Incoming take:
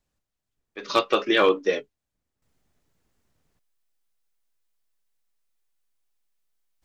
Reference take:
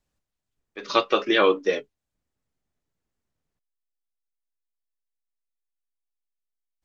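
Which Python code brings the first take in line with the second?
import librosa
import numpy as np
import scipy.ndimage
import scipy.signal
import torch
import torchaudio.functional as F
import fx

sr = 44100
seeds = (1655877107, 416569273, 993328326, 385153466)

y = fx.fix_declip(x, sr, threshold_db=-10.0)
y = fx.fix_level(y, sr, at_s=2.42, step_db=-11.0)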